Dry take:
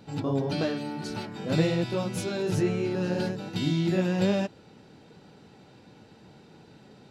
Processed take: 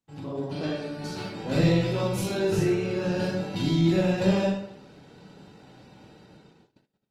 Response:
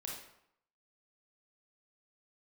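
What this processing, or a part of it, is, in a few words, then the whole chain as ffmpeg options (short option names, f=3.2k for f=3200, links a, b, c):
speakerphone in a meeting room: -filter_complex "[1:a]atrim=start_sample=2205[a];[0:a][a]afir=irnorm=-1:irlink=0,dynaudnorm=f=130:g=13:m=7.5dB,agate=range=-29dB:threshold=-49dB:ratio=16:detection=peak,volume=-3.5dB" -ar 48000 -c:a libopus -b:a 24k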